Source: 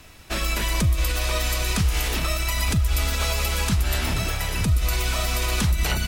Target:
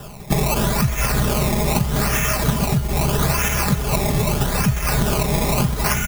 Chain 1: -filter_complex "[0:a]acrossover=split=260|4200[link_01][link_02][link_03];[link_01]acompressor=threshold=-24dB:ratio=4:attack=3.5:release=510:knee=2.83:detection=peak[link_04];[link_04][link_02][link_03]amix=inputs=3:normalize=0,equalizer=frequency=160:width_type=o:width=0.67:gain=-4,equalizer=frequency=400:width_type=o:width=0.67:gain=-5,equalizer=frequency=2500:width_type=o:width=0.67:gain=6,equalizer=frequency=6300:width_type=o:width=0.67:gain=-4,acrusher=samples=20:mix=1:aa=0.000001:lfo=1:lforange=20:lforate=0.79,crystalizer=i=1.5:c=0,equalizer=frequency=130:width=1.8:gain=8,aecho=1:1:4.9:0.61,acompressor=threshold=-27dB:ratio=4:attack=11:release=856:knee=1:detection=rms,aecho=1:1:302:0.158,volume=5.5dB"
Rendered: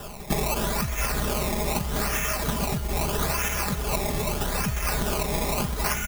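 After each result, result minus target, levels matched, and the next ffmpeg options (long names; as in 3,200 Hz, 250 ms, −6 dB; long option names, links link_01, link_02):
downward compressor: peak gain reduction +5.5 dB; 125 Hz band −4.0 dB
-filter_complex "[0:a]acrossover=split=260|4200[link_01][link_02][link_03];[link_01]acompressor=threshold=-24dB:ratio=4:attack=3.5:release=510:knee=2.83:detection=peak[link_04];[link_04][link_02][link_03]amix=inputs=3:normalize=0,equalizer=frequency=160:width_type=o:width=0.67:gain=-4,equalizer=frequency=400:width_type=o:width=0.67:gain=-5,equalizer=frequency=2500:width_type=o:width=0.67:gain=6,equalizer=frequency=6300:width_type=o:width=0.67:gain=-4,acrusher=samples=20:mix=1:aa=0.000001:lfo=1:lforange=20:lforate=0.79,crystalizer=i=1.5:c=0,equalizer=frequency=130:width=1.8:gain=8,aecho=1:1:4.9:0.61,acompressor=threshold=-18.5dB:ratio=4:attack=11:release=856:knee=1:detection=rms,aecho=1:1:302:0.158,volume=5.5dB"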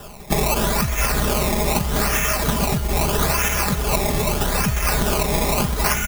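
125 Hz band −4.0 dB
-filter_complex "[0:a]acrossover=split=260|4200[link_01][link_02][link_03];[link_01]acompressor=threshold=-24dB:ratio=4:attack=3.5:release=510:knee=2.83:detection=peak[link_04];[link_04][link_02][link_03]amix=inputs=3:normalize=0,equalizer=frequency=160:width_type=o:width=0.67:gain=-4,equalizer=frequency=400:width_type=o:width=0.67:gain=-5,equalizer=frequency=2500:width_type=o:width=0.67:gain=6,equalizer=frequency=6300:width_type=o:width=0.67:gain=-4,acrusher=samples=20:mix=1:aa=0.000001:lfo=1:lforange=20:lforate=0.79,crystalizer=i=1.5:c=0,equalizer=frequency=130:width=1.8:gain=18,aecho=1:1:4.9:0.61,acompressor=threshold=-18.5dB:ratio=4:attack=11:release=856:knee=1:detection=rms,aecho=1:1:302:0.158,volume=5.5dB"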